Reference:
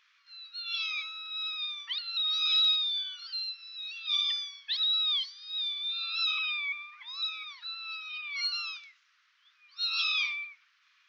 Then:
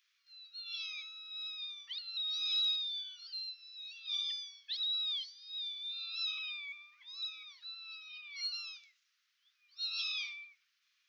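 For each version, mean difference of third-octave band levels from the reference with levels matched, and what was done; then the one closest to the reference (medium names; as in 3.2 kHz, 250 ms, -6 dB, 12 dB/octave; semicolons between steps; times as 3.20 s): 1.5 dB: differentiator; trim -2 dB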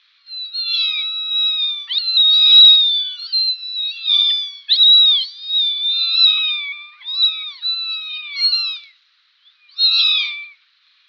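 3.0 dB: resonant low-pass 4 kHz, resonance Q 6.6; trim +3 dB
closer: first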